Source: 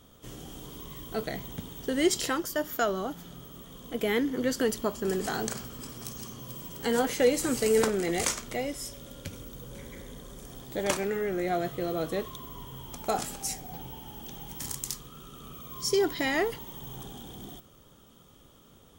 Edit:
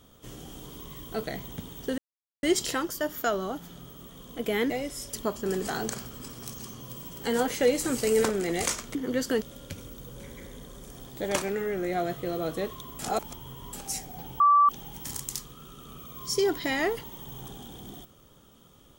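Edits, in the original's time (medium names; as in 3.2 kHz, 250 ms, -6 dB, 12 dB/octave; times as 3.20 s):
1.98 s: insert silence 0.45 s
4.25–4.72 s: swap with 8.54–8.97 s
12.54–13.28 s: reverse
13.95–14.24 s: bleep 1.16 kHz -15.5 dBFS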